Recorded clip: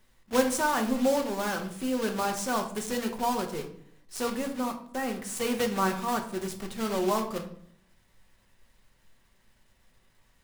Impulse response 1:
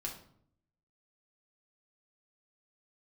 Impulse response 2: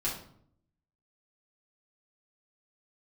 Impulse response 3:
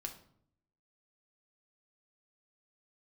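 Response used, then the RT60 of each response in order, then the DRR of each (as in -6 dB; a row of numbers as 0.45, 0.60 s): 3; 0.65, 0.65, 0.65 s; -1.5, -7.0, 3.5 dB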